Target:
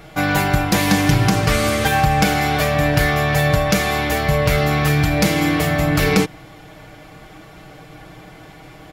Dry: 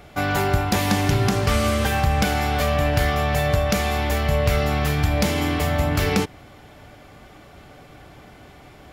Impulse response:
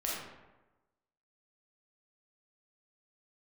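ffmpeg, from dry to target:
-af "aecho=1:1:6.3:0.69,volume=1.5"

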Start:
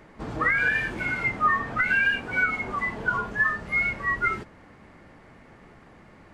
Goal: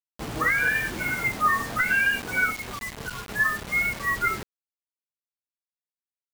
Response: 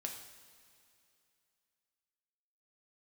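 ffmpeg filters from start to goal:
-filter_complex "[0:a]asettb=1/sr,asplit=3[s0][s1][s2];[s0]atrim=end=2.514[s3];[s1]atrim=start=2.51:end=3.29,asetpts=PTS-STARTPTS,afade=t=in:d=0.004:c=qsin,afade=t=out:st=0.776:d=0.004:c=qsin,acrossover=split=140|3000[s4][s5][s6];[s5]acompressor=threshold=0.0158:ratio=8[s7];[s4][s7][s6]amix=inputs=3:normalize=0[s8];[s2]atrim=start=3.286[s9];[s3][s8]acrossfade=d=0.004:c1=hsin:c2=qsin[s10];[s10][s9]acrossfade=d=0.004:c1=qsin:c2=hsin,acrusher=bits=5:mix=0:aa=0.000001"

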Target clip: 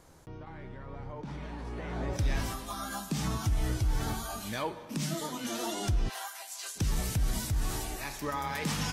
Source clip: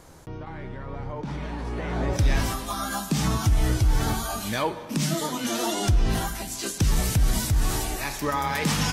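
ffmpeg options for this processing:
-filter_complex "[0:a]asplit=3[s0][s1][s2];[s0]afade=t=out:st=6.08:d=0.02[s3];[s1]highpass=f=680:w=0.5412,highpass=f=680:w=1.3066,afade=t=in:st=6.08:d=0.02,afade=t=out:st=6.75:d=0.02[s4];[s2]afade=t=in:st=6.75:d=0.02[s5];[s3][s4][s5]amix=inputs=3:normalize=0,volume=0.398"

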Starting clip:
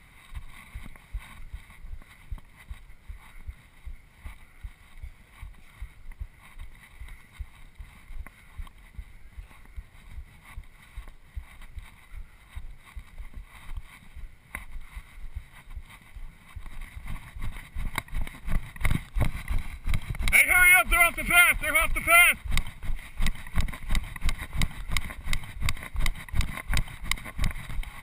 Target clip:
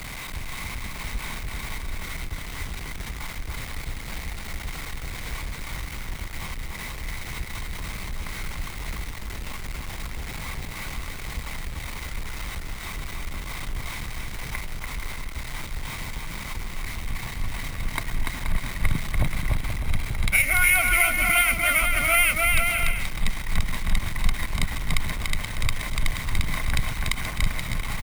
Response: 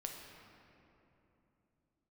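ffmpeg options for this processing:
-filter_complex "[0:a]aeval=exprs='val(0)+0.5*0.0299*sgn(val(0))':c=same,aecho=1:1:290|478.5|601|680.7|732.4:0.631|0.398|0.251|0.158|0.1,acrossover=split=130|3000[s0][s1][s2];[s1]acompressor=threshold=0.0631:ratio=2[s3];[s0][s3][s2]amix=inputs=3:normalize=0"

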